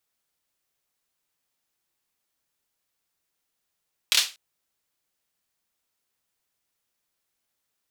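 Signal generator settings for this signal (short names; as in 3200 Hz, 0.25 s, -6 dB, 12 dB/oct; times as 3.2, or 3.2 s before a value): hand clap length 0.24 s, bursts 3, apart 26 ms, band 3700 Hz, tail 0.28 s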